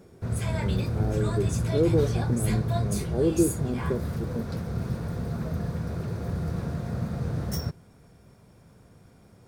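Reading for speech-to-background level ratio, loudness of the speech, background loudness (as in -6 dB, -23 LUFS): 0.5 dB, -29.5 LUFS, -30.0 LUFS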